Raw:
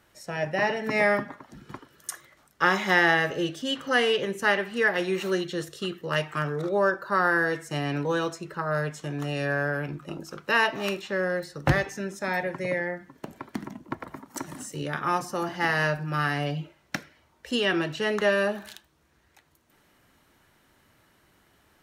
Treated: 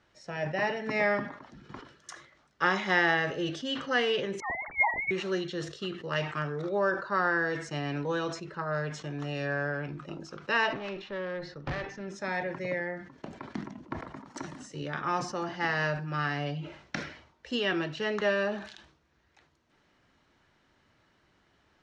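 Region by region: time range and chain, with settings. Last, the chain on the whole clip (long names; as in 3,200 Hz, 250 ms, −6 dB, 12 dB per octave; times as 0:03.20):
0:04.40–0:05.11: three sine waves on the formant tracks + dynamic equaliser 1,300 Hz, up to −6 dB, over −35 dBFS, Q 0.9 + voice inversion scrambler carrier 2,600 Hz
0:10.73–0:12.08: high-frequency loss of the air 150 metres + tube saturation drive 25 dB, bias 0.45 + highs frequency-modulated by the lows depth 0.2 ms
whole clip: low-pass filter 6,100 Hz 24 dB per octave; level that may fall only so fast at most 94 dB per second; level −4.5 dB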